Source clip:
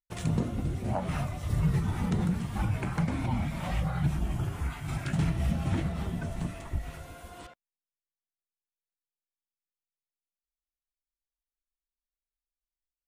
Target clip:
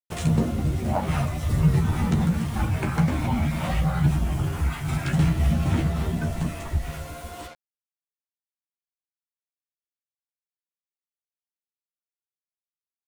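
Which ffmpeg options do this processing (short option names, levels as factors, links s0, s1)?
-filter_complex "[0:a]asplit=2[s0][s1];[s1]asoftclip=type=hard:threshold=0.0188,volume=0.355[s2];[s0][s2]amix=inputs=2:normalize=0,acrusher=bits=7:mix=0:aa=0.5,asplit=2[s3][s4];[s4]adelay=13,volume=0.562[s5];[s3][s5]amix=inputs=2:normalize=0,volume=1.58"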